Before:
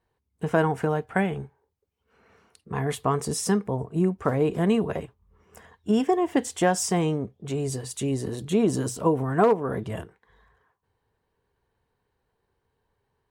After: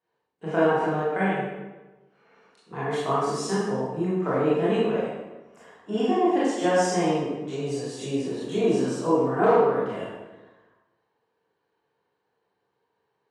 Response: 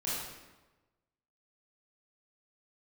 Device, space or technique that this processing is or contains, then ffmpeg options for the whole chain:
supermarket ceiling speaker: -filter_complex "[0:a]highpass=280,lowpass=5.3k[a];[1:a]atrim=start_sample=2205[b];[a][b]afir=irnorm=-1:irlink=0,volume=-2.5dB"

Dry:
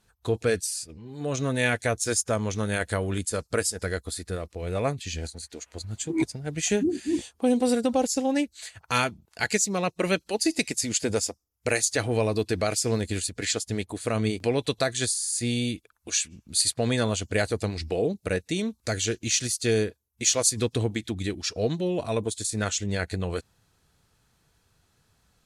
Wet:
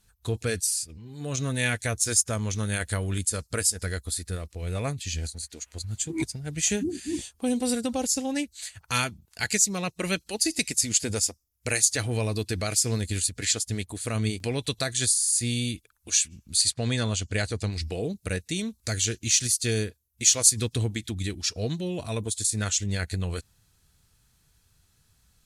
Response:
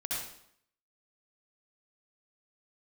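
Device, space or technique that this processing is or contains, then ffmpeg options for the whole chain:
smiley-face EQ: -filter_complex "[0:a]lowshelf=f=95:g=6.5,equalizer=f=560:t=o:w=2.6:g=-7,highshelf=f=6.5k:g=7.5,asettb=1/sr,asplit=3[a][b][c];[a]atrim=end=16.564[d];[b]atrim=start=16.56:end=17.73,asetpts=PTS-STARTPTS,afade=t=in:d=0.004:c=qsin,afade=t=out:st=1.166:d=0.004:c=qsin,lowpass=7.7k[e];[c]atrim=start=17.726[f];[d][e]acrossfade=d=0.004:c1=hsin:c2=qsin[g];[g][f]acrossfade=d=0.004:c1=qsin:c2=hsin"

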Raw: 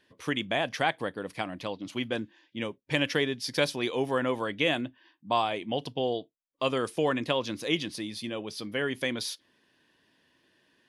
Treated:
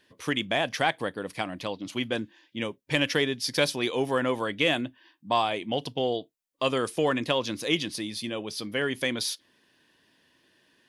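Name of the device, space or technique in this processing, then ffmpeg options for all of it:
parallel distortion: -filter_complex "[0:a]highshelf=f=4.2k:g=4.5,asplit=2[a][b];[b]asoftclip=type=hard:threshold=-20.5dB,volume=-13dB[c];[a][c]amix=inputs=2:normalize=0"

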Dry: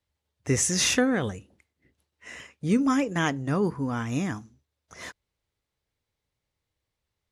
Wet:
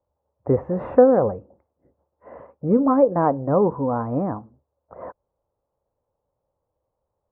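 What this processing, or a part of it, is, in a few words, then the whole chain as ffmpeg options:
under water: -af "lowpass=f=950:w=0.5412,lowpass=f=950:w=1.3066,equalizer=f=540:t=o:w=0.38:g=9.5,equalizer=f=1k:t=o:w=2:g=11,volume=1.5dB"

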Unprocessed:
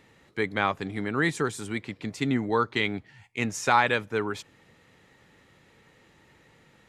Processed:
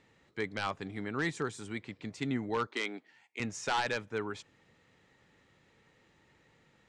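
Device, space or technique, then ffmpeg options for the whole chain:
synthesiser wavefolder: -filter_complex "[0:a]aeval=exprs='0.168*(abs(mod(val(0)/0.168+3,4)-2)-1)':c=same,lowpass=f=8.6k:w=0.5412,lowpass=f=8.6k:w=1.3066,asettb=1/sr,asplit=3[a][b][c];[a]atrim=end=2.674[d];[b]atrim=start=2.67:end=3.4,asetpts=PTS-STARTPTS,afade=t=in:d=0.004:c=qsin,afade=t=out:st=0.726:d=0.004:c=qsin,highpass=f=250:w=0.5412,highpass=f=250:w=1.3066[e];[c]atrim=start=3.396[f];[d][e]acrossfade=d=0.004:c1=hsin:c2=qsin[g];[g][f]acrossfade=d=0.004:c1=qsin:c2=hsin,volume=-7.5dB"

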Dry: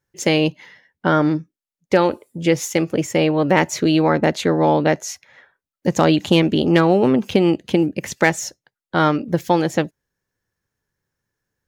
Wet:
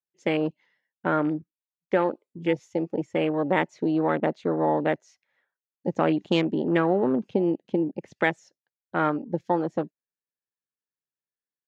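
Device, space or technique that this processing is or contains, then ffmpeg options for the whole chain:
over-cleaned archive recording: -af "highpass=180,lowpass=5k,afwtdn=0.0562,volume=-7dB"

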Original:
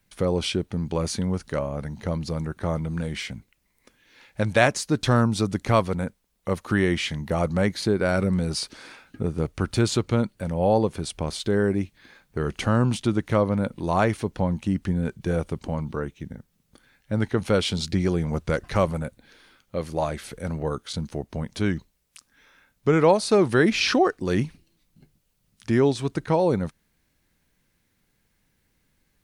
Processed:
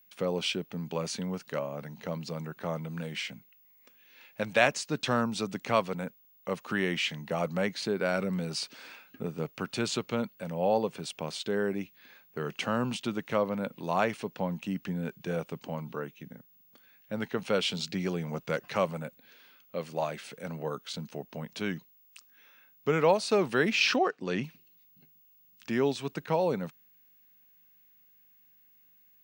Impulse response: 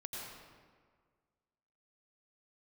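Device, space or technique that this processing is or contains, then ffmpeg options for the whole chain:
old television with a line whistle: -filter_complex "[0:a]highpass=f=160:w=0.5412,highpass=f=160:w=1.3066,equalizer=f=210:t=q:w=4:g=-3,equalizer=f=330:t=q:w=4:g=-7,equalizer=f=2.7k:t=q:w=4:g=7,lowpass=f=8.5k:w=0.5412,lowpass=f=8.5k:w=1.3066,aeval=exprs='val(0)+0.002*sin(2*PI*15625*n/s)':c=same,asettb=1/sr,asplit=3[a][b][c];[a]atrim=end=23.964[d];[b]atrim=start=23.96:end=24.44,asetpts=PTS-STARTPTS,afade=t=in:d=0.004:c=qsin,afade=t=out:st=0.476:d=0.004:c=qsin,lowpass=5.9k[e];[c]atrim=start=24.436[f];[d][e]acrossfade=d=0.004:c1=hsin:c2=qsin[g];[g][f]acrossfade=d=0.004:c1=qsin:c2=hsin,volume=-5dB"

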